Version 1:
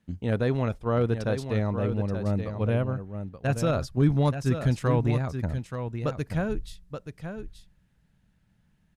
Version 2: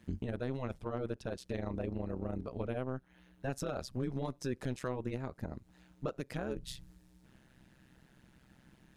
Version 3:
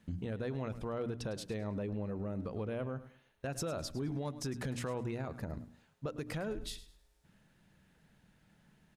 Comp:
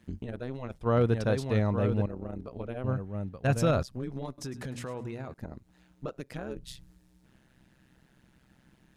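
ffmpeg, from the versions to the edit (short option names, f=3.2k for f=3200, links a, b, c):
-filter_complex "[0:a]asplit=2[a][b];[1:a]asplit=4[c][d][e][f];[c]atrim=end=0.812[g];[a]atrim=start=0.808:end=2.062[h];[d]atrim=start=2.058:end=2.842[i];[b]atrim=start=2.838:end=3.832[j];[e]atrim=start=3.828:end=4.382[k];[2:a]atrim=start=4.378:end=5.342[l];[f]atrim=start=5.338[m];[g][h]acrossfade=d=0.004:c1=hsin:c2=hsin[n];[n][i]acrossfade=d=0.004:c1=hsin:c2=hsin[o];[o][j]acrossfade=d=0.004:c1=hsin:c2=hsin[p];[p][k]acrossfade=d=0.004:c1=hsin:c2=hsin[q];[q][l]acrossfade=d=0.004:c1=hsin:c2=hsin[r];[r][m]acrossfade=d=0.004:c1=hsin:c2=hsin"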